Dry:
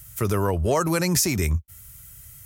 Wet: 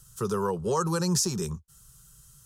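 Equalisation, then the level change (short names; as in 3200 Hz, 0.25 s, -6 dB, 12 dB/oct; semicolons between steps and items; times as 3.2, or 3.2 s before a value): air absorption 90 m; high shelf 5500 Hz +11 dB; fixed phaser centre 430 Hz, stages 8; -2.0 dB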